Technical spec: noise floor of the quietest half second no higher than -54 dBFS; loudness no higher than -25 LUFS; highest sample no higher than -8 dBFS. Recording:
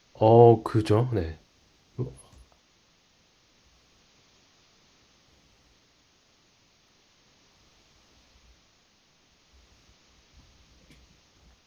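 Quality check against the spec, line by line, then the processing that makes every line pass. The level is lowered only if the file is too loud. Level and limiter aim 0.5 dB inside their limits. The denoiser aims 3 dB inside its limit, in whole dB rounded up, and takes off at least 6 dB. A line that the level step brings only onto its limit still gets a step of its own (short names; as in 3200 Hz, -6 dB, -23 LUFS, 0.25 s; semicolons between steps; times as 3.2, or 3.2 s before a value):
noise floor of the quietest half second -64 dBFS: OK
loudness -22.0 LUFS: fail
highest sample -3.0 dBFS: fail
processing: gain -3.5 dB; limiter -8.5 dBFS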